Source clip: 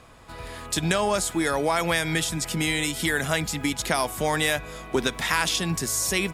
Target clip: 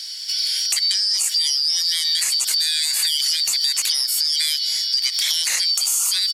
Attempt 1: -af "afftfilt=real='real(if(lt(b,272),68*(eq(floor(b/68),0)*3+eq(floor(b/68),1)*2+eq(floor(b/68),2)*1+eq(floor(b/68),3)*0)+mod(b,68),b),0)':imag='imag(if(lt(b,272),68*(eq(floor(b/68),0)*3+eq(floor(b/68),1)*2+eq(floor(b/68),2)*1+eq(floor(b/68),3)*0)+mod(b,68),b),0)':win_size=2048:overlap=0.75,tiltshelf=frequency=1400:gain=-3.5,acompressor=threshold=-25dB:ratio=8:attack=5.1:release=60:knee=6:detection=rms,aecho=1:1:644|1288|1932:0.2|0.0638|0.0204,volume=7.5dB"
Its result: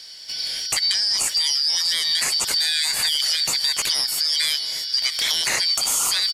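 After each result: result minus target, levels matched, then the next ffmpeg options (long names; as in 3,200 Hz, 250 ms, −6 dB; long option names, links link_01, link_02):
1,000 Hz band +11.0 dB; echo-to-direct +9 dB
-af "afftfilt=real='real(if(lt(b,272),68*(eq(floor(b/68),0)*3+eq(floor(b/68),1)*2+eq(floor(b/68),2)*1+eq(floor(b/68),3)*0)+mod(b,68),b),0)':imag='imag(if(lt(b,272),68*(eq(floor(b/68),0)*3+eq(floor(b/68),1)*2+eq(floor(b/68),2)*1+eq(floor(b/68),3)*0)+mod(b,68),b),0)':win_size=2048:overlap=0.75,tiltshelf=frequency=1400:gain=-14.5,acompressor=threshold=-25dB:ratio=8:attack=5.1:release=60:knee=6:detection=rms,aecho=1:1:644|1288|1932:0.2|0.0638|0.0204,volume=7.5dB"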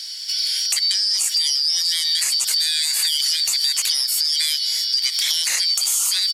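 echo-to-direct +9 dB
-af "afftfilt=real='real(if(lt(b,272),68*(eq(floor(b/68),0)*3+eq(floor(b/68),1)*2+eq(floor(b/68),2)*1+eq(floor(b/68),3)*0)+mod(b,68),b),0)':imag='imag(if(lt(b,272),68*(eq(floor(b/68),0)*3+eq(floor(b/68),1)*2+eq(floor(b/68),2)*1+eq(floor(b/68),3)*0)+mod(b,68),b),0)':win_size=2048:overlap=0.75,tiltshelf=frequency=1400:gain=-14.5,acompressor=threshold=-25dB:ratio=8:attack=5.1:release=60:knee=6:detection=rms,aecho=1:1:644|1288:0.0708|0.0227,volume=7.5dB"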